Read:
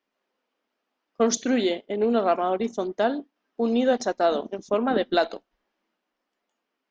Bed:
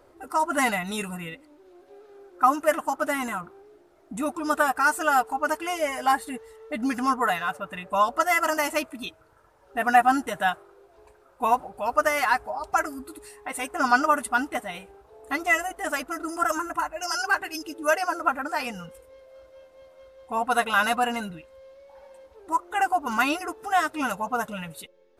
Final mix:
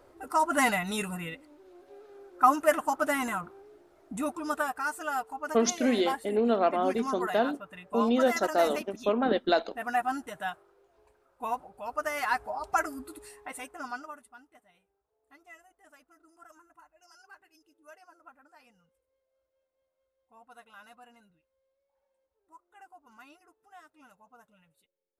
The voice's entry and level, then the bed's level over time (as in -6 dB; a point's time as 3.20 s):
4.35 s, -3.0 dB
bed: 4.06 s -1.5 dB
4.84 s -10.5 dB
12.00 s -10.5 dB
12.48 s -3.5 dB
13.34 s -3.5 dB
14.41 s -30 dB